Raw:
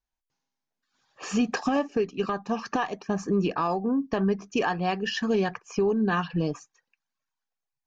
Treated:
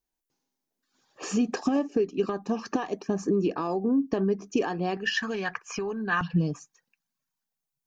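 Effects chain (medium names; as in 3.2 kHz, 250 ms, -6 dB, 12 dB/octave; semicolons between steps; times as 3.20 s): treble shelf 5.9 kHz +12 dB; compression 2:1, threshold -32 dBFS, peak gain reduction 7 dB; peaking EQ 330 Hz +12 dB 1.7 oct, from 4.97 s 1.6 kHz, from 6.21 s 180 Hz; trim -3 dB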